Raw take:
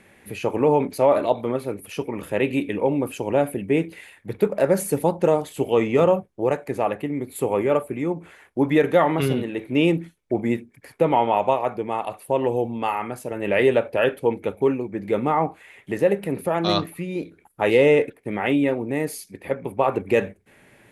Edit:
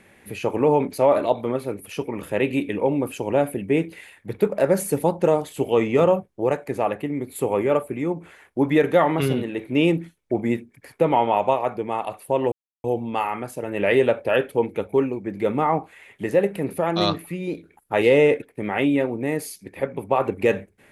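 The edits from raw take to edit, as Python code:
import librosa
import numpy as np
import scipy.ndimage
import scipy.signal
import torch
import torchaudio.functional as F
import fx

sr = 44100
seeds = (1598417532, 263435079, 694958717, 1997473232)

y = fx.edit(x, sr, fx.insert_silence(at_s=12.52, length_s=0.32), tone=tone)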